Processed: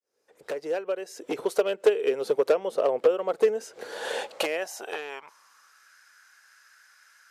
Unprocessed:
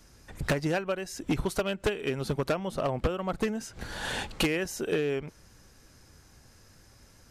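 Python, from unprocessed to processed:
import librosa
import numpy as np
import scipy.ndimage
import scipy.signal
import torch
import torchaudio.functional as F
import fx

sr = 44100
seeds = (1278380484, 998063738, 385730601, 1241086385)

y = fx.fade_in_head(x, sr, length_s=1.49)
y = fx.filter_sweep_highpass(y, sr, from_hz=460.0, to_hz=1500.0, start_s=4.05, end_s=5.93, q=5.2)
y = y * 10.0 ** (-1.5 / 20.0)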